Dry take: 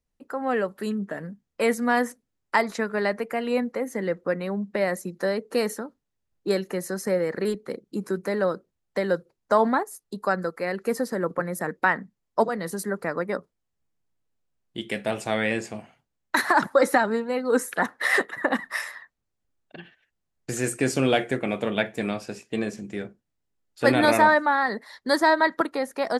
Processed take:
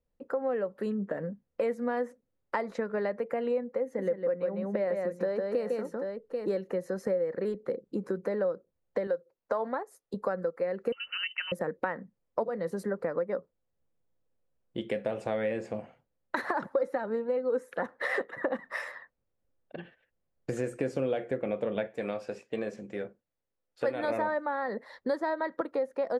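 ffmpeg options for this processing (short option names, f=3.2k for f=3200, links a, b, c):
-filter_complex "[0:a]asettb=1/sr,asplit=3[a][b][c];[a]atrim=end=3.834[d];[b]atrim=start=3.83:end=6.52,asetpts=PTS-STARTPTS,afade=t=in:d=0.004:c=qsin,afade=t=out:st=2.686:d=0.004:c=qsin,aecho=1:1:154|787:0.631|0.211,atrim=end_sample=118629[e];[c]atrim=start=6.516[f];[d][e]acrossfade=d=0.004:c1=hsin:c2=qsin[g];[g][f]acrossfade=d=0.004:c1=qsin:c2=hsin,asettb=1/sr,asplit=3[h][i][j];[h]atrim=end=9.074[k];[i]atrim=start=9.07:end=10.14,asetpts=PTS-STARTPTS,afade=t=in:d=0.004:c=qsin,afade=t=out:st=1.066:d=0.004:c=qsin,lowshelf=f=310:g=-12[l];[j]atrim=start=10.136[m];[k][l]acrossfade=d=0.004:c1=hsin:c2=qsin[n];[n][m]acrossfade=d=0.004:c1=qsin:c2=hsin,asettb=1/sr,asplit=3[o][p][q];[o]atrim=end=10.924[r];[p]atrim=start=10.92:end=11.52,asetpts=PTS-STARTPTS,afade=t=in:d=0.004:c=qsin,afade=t=out:st=0.596:d=0.004:c=qsin,lowpass=f=2.7k:t=q:w=0.5098,lowpass=f=2.7k:t=q:w=0.6013,lowpass=f=2.7k:t=q:w=0.9,lowpass=f=2.7k:t=q:w=2.563,afreqshift=-3200[s];[q]atrim=start=11.516[t];[r][s]acrossfade=d=0.004:c1=hsin:c2=qsin[u];[u][t]acrossfade=d=0.004:c1=qsin:c2=hsin,asettb=1/sr,asplit=3[v][w][x];[v]atrim=end=21.874[y];[w]atrim=start=21.87:end=24.1,asetpts=PTS-STARTPTS,afade=t=in:d=0.004:c=qsin,afade=t=out:st=2.226:d=0.004:c=qsin,lowshelf=f=450:g=-9.5[z];[x]atrim=start=24.096[aa];[y][z]acrossfade=d=0.004:c1=hsin:c2=qsin[ab];[ab][aa]acrossfade=d=0.004:c1=qsin:c2=hsin,lowpass=f=1.4k:p=1,equalizer=f=520:t=o:w=0.32:g=11.5,acompressor=threshold=-29dB:ratio=4"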